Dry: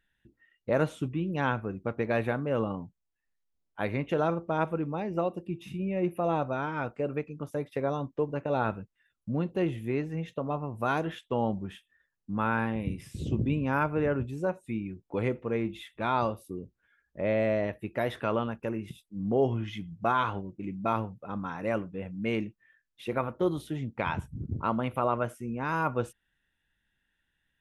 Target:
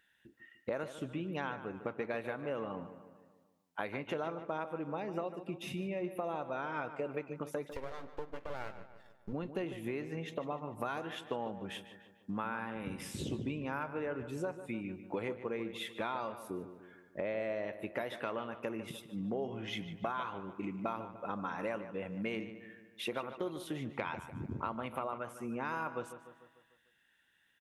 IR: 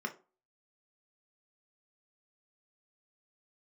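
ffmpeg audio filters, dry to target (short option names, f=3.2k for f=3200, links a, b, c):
-filter_complex "[0:a]highpass=f=420:p=1,acompressor=threshold=-42dB:ratio=6,asettb=1/sr,asplit=3[a][b][c];[a]atrim=end=7.694[d];[b]atrim=start=7.69:end=9.33,asetpts=PTS-STARTPTS,afade=t=in:d=0.004:c=qsin,afade=t=out:st=1.636:d=0.004:c=qsin,aeval=exprs='max(val(0),0)':c=same[e];[c]atrim=start=9.326[f];[d][e]acrossfade=d=0.004:c1=hsin:c2=qsin[g];[g][f]acrossfade=d=0.004:c1=qsin:c2=hsin,asplit=2[h][i];[i]adelay=149,lowpass=f=3.7k:p=1,volume=-11.5dB,asplit=2[j][k];[k]adelay=149,lowpass=f=3.7k:p=1,volume=0.54,asplit=2[l][m];[m]adelay=149,lowpass=f=3.7k:p=1,volume=0.54,asplit=2[n][o];[o]adelay=149,lowpass=f=3.7k:p=1,volume=0.54,asplit=2[p][q];[q]adelay=149,lowpass=f=3.7k:p=1,volume=0.54,asplit=2[r][s];[s]adelay=149,lowpass=f=3.7k:p=1,volume=0.54[t];[j][l][n][p][r][t]amix=inputs=6:normalize=0[u];[h][u]amix=inputs=2:normalize=0,volume=6.5dB"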